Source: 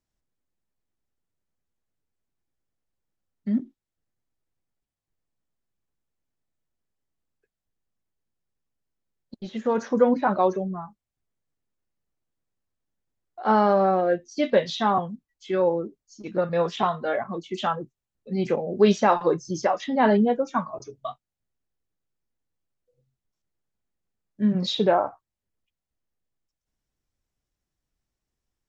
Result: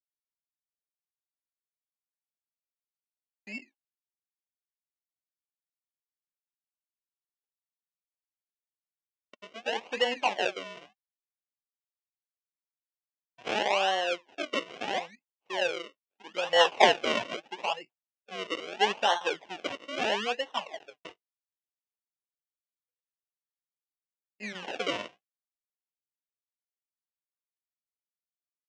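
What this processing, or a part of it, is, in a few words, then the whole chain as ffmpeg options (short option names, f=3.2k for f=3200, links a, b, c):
circuit-bent sampling toy: -filter_complex "[0:a]agate=range=-28dB:threshold=-43dB:ratio=16:detection=peak,asplit=3[a][b][c];[a]afade=t=out:st=16.43:d=0.02[d];[b]equalizer=f=900:w=0.6:g=13.5,afade=t=in:st=16.43:d=0.02,afade=t=out:st=17.36:d=0.02[e];[c]afade=t=in:st=17.36:d=0.02[f];[d][e][f]amix=inputs=3:normalize=0,acrusher=samples=36:mix=1:aa=0.000001:lfo=1:lforange=36:lforate=0.77,highpass=580,equalizer=f=820:t=q:w=4:g=4,equalizer=f=1.3k:t=q:w=4:g=-8,equalizer=f=2.8k:t=q:w=4:g=8,equalizer=f=4.4k:t=q:w=4:g=-7,lowpass=f=5.5k:w=0.5412,lowpass=f=5.5k:w=1.3066,volume=-5dB"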